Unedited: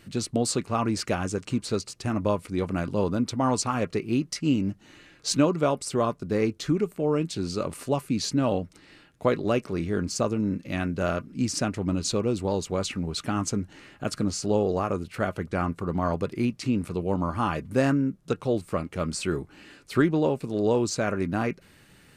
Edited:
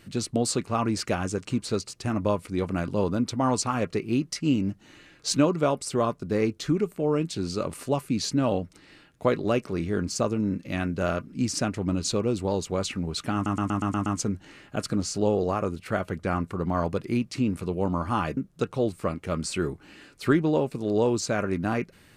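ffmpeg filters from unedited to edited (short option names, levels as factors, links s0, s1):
-filter_complex "[0:a]asplit=8[s0][s1][s2][s3][s4][s5][s6][s7];[s0]atrim=end=13.462[s8];[s1]atrim=start=13.338:end=13.462[s9];[s2]atrim=start=13.338:end=13.462[s10];[s3]atrim=start=13.338:end=13.462[s11];[s4]atrim=start=13.338:end=13.462[s12];[s5]atrim=start=13.338:end=13.462[s13];[s6]atrim=start=13.338:end=17.652[s14];[s7]atrim=start=18.058[s15];[s8][s9]acrossfade=d=0.004:c1=hsin:c2=hsin[s16];[s16][s10]acrossfade=d=0.004:c1=hsin:c2=hsin[s17];[s17][s11]acrossfade=d=0.004:c1=hsin:c2=hsin[s18];[s18][s12]acrossfade=d=0.004:c1=hsin:c2=hsin[s19];[s19][s13]acrossfade=d=0.004:c1=hsin:c2=hsin[s20];[s20][s14]acrossfade=d=0.004:c1=hsin:c2=hsin[s21];[s21][s15]acrossfade=d=0.004:c1=hsin:c2=hsin"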